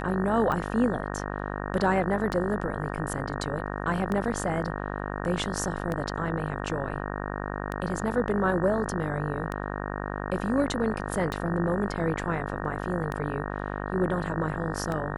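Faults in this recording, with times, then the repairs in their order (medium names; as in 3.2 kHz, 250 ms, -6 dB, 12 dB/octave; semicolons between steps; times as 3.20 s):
buzz 50 Hz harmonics 37 -33 dBFS
tick 33 1/3 rpm -18 dBFS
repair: de-click; de-hum 50 Hz, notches 37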